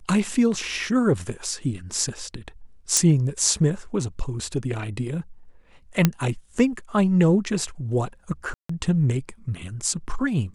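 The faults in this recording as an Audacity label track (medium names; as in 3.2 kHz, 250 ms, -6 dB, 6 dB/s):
2.970000	2.970000	pop
6.050000	6.050000	pop -3 dBFS
8.540000	8.690000	dropout 154 ms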